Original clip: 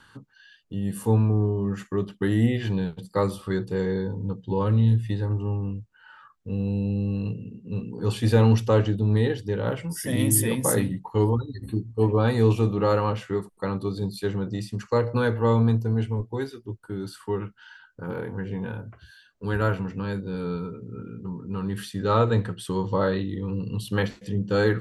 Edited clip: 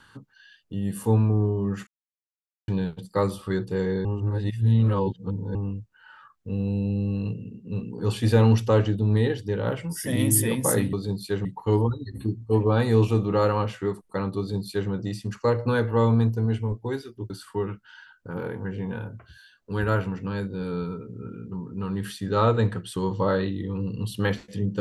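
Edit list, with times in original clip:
1.87–2.68 mute
4.05–5.55 reverse
13.86–14.38 copy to 10.93
16.78–17.03 cut

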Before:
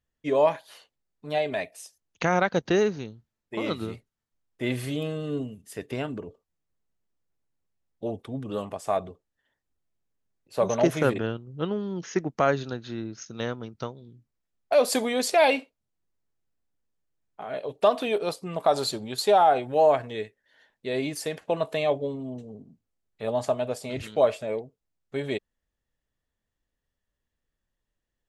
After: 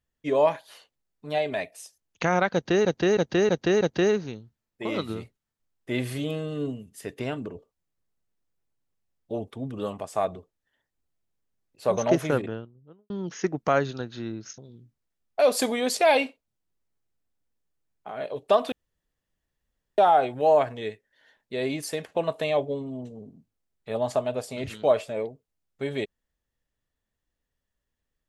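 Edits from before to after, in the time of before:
2.53–2.85 loop, 5 plays
10.79–11.82 studio fade out
13.3–13.91 cut
18.05–19.31 room tone

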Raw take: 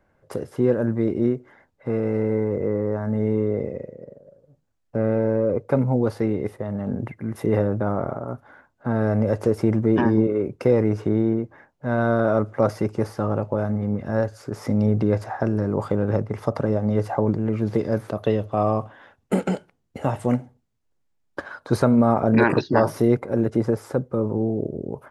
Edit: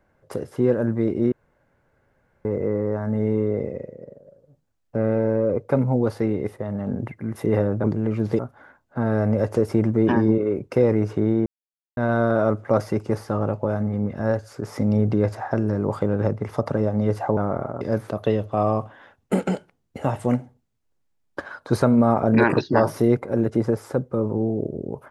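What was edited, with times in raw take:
1.32–2.45 room tone
7.84–8.28 swap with 17.26–17.81
11.35–11.86 mute

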